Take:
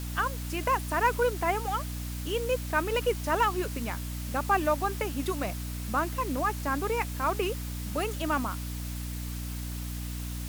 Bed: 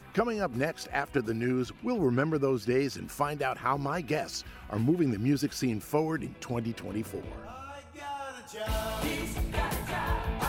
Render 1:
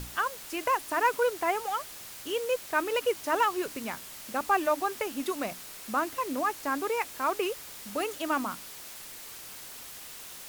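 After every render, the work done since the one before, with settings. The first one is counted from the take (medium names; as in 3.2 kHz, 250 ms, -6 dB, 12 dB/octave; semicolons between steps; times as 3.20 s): hum notches 60/120/180/240/300 Hz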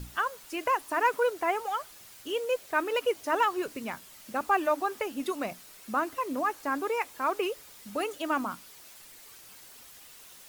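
noise reduction 8 dB, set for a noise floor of -45 dBFS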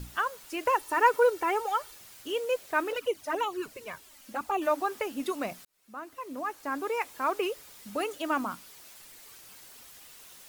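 0.65–1.96 s: comb 2.2 ms; 2.92–4.62 s: touch-sensitive flanger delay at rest 4.7 ms, full sweep at -22 dBFS; 5.65–7.09 s: fade in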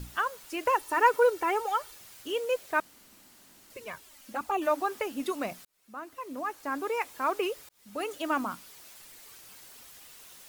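2.80–3.70 s: room tone; 7.69–8.13 s: fade in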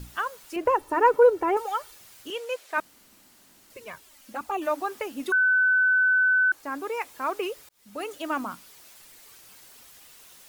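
0.56–1.57 s: tilt shelf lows +8.5 dB, about 1.3 kHz; 2.30–2.78 s: frequency weighting A; 5.32–6.52 s: bleep 1.51 kHz -17.5 dBFS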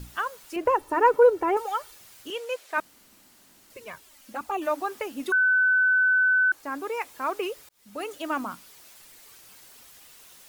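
no audible change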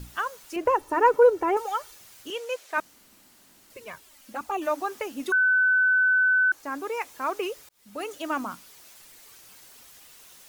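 dynamic bell 6.2 kHz, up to +4 dB, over -58 dBFS, Q 3.2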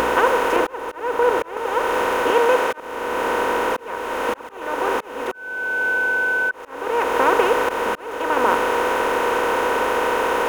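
spectral levelling over time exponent 0.2; slow attack 558 ms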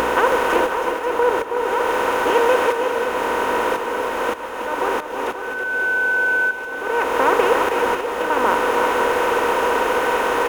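multi-tap echo 322/535 ms -7/-9 dB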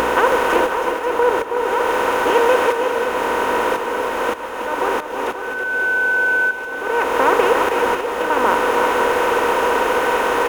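trim +1.5 dB; peak limiter -3 dBFS, peak gain reduction 1.5 dB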